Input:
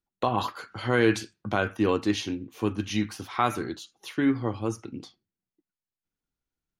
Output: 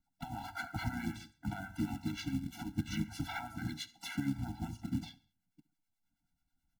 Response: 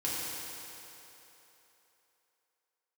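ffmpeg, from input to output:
-filter_complex "[0:a]acompressor=threshold=0.0158:ratio=16,highshelf=f=2100:g=-3.5,bandreject=f=50:t=h:w=6,bandreject=f=100:t=h:w=6,bandreject=f=150:t=h:w=6,alimiter=level_in=2.24:limit=0.0631:level=0:latency=1:release=258,volume=0.447,asplit=4[s0][s1][s2][s3];[s1]asetrate=22050,aresample=44100,atempo=2,volume=0.447[s4];[s2]asetrate=33038,aresample=44100,atempo=1.33484,volume=0.501[s5];[s3]asetrate=58866,aresample=44100,atempo=0.749154,volume=0.2[s6];[s0][s4][s5][s6]amix=inputs=4:normalize=0,acrossover=split=910[s7][s8];[s7]aeval=exprs='val(0)*(1-0.7/2+0.7/2*cos(2*PI*9.3*n/s))':c=same[s9];[s8]aeval=exprs='val(0)*(1-0.7/2-0.7/2*cos(2*PI*9.3*n/s))':c=same[s10];[s9][s10]amix=inputs=2:normalize=0,acrusher=bits=4:mode=log:mix=0:aa=0.000001,aecho=1:1:68|136|204:0.0944|0.0406|0.0175,afftfilt=real='re*eq(mod(floor(b*sr/1024/330),2),0)':imag='im*eq(mod(floor(b*sr/1024/330),2),0)':win_size=1024:overlap=0.75,volume=2.82"

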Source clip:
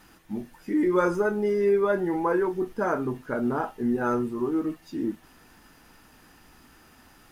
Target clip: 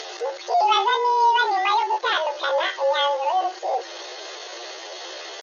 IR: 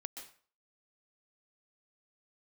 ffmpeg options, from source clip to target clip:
-af "aeval=exprs='val(0)+0.5*0.0237*sgn(val(0))':c=same,afreqshift=-19,bandreject=f=930:w=6.7,acompressor=mode=upward:threshold=0.0316:ratio=2.5,asetrate=80880,aresample=44100,atempo=0.545254,afftfilt=real='re*between(b*sr/4096,240,5000)':imag='im*between(b*sr/4096,240,5000)':win_size=4096:overlap=0.75,asetrate=59535,aresample=44100,volume=1.5" -ar 32000 -c:a aac -b:a 48k

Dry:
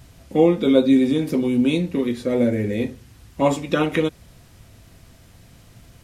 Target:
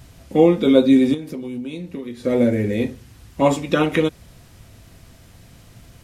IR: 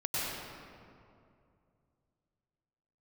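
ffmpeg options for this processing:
-filter_complex "[0:a]asettb=1/sr,asplit=3[s0][s1][s2];[s0]atrim=end=1.144[s3];[s1]atrim=start=1.14:end=2.24,asetpts=PTS-STARTPTS,afade=t=in:d=0.004:c=qsin,afade=t=out:st=1.096:d=0.004:c=qsin,acompressor=threshold=0.0316:ratio=6[s4];[s2]atrim=start=2.236[s5];[s3][s4]acrossfade=d=0.004:c1=hsin:c2=qsin[s6];[s6][s5]acrossfade=d=0.004:c1=qsin:c2=hsin,volume=1.26"

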